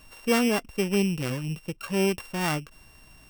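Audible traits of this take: a buzz of ramps at a fixed pitch in blocks of 16 samples

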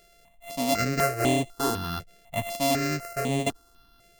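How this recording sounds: a buzz of ramps at a fixed pitch in blocks of 64 samples; notches that jump at a steady rate 4 Hz 260–5100 Hz

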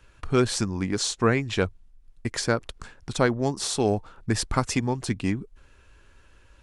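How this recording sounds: noise floor -56 dBFS; spectral tilt -4.5 dB/octave

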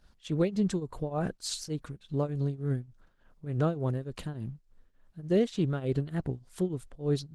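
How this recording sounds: tremolo triangle 3.4 Hz, depth 90%; Opus

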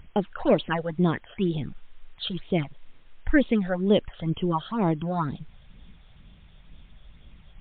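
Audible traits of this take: phasing stages 8, 2.1 Hz, lowest notch 280–1800 Hz; a quantiser's noise floor 10-bit, dither triangular; MP3

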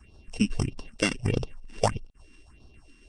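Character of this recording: a buzz of ramps at a fixed pitch in blocks of 16 samples; phasing stages 4, 1.6 Hz, lowest notch 100–2100 Hz; tremolo saw down 7.3 Hz, depth 40%; Nellymoser

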